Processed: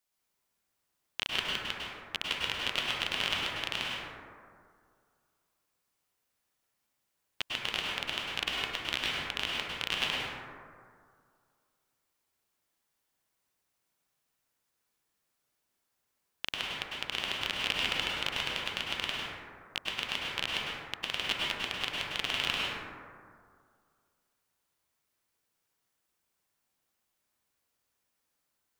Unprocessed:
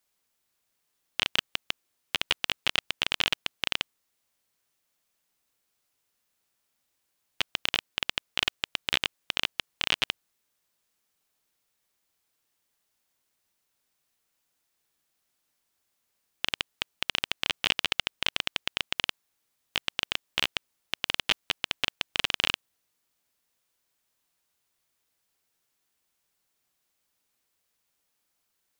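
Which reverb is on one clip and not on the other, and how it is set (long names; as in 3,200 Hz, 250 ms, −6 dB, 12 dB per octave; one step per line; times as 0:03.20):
dense smooth reverb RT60 2.1 s, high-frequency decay 0.3×, pre-delay 90 ms, DRR −4.5 dB
level −7 dB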